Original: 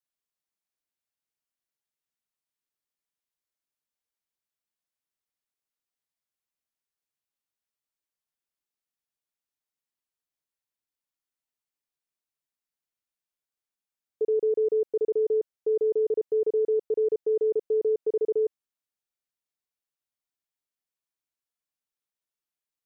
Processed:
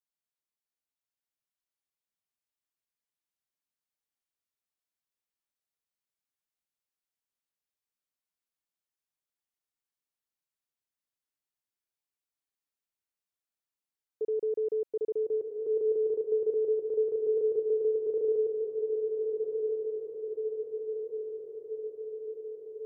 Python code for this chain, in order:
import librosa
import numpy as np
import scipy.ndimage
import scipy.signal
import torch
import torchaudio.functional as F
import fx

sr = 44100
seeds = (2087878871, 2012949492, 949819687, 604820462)

y = fx.echo_diffused(x, sr, ms=1330, feedback_pct=65, wet_db=-3.0)
y = y * librosa.db_to_amplitude(-6.0)